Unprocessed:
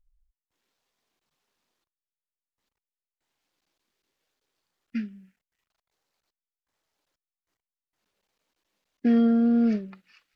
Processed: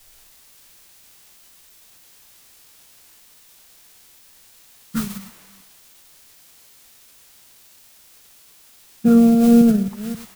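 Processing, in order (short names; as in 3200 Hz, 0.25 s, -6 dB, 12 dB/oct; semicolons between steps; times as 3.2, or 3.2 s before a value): reverse delay 0.267 s, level -12.5 dB; LPF 1700 Hz 24 dB/oct; tilt -1.5 dB/oct; in parallel at -11.5 dB: requantised 6-bit, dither triangular; on the sum: added noise pink -62 dBFS; on a send: tapped delay 98/107 ms -17.5/-17 dB; on the sum: formant shift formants -5 st; three-band expander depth 70%; gain -2.5 dB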